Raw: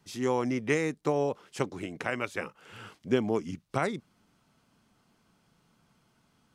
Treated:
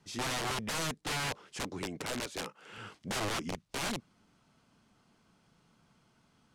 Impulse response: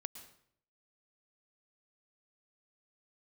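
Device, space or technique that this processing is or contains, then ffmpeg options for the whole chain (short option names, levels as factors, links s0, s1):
overflowing digital effects unit: -filter_complex "[0:a]asettb=1/sr,asplit=3[s0][s1][s2];[s0]atrim=end=2.264[s3];[s1]atrim=start=2.26:end=2.78,asetpts=PTS-STARTPTS,afade=t=in:d=0.004:c=qsin,afade=t=out:st=0.516:d=0.004:c=qsin,highpass=170[s4];[s2]atrim=start=2.776[s5];[s3][s4]acrossfade=d=0.004:c1=hsin:c2=qsin[s6];[s6][s5]acrossfade=d=0.004:c1=qsin:c2=hsin,aeval=exprs='(mod(28.2*val(0)+1,2)-1)/28.2':c=same,lowpass=9700"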